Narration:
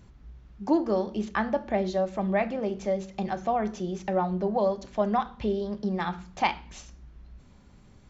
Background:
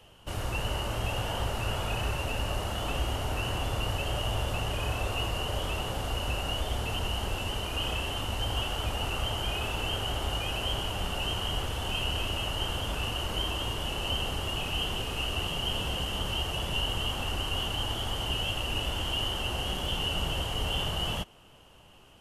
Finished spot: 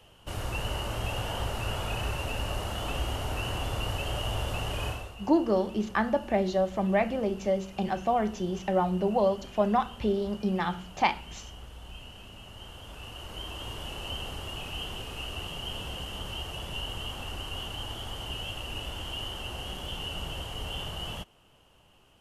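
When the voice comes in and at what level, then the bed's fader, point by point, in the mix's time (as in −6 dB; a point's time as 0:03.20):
4.60 s, +0.5 dB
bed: 0:04.88 −1 dB
0:05.16 −16.5 dB
0:12.40 −16.5 dB
0:13.75 −5.5 dB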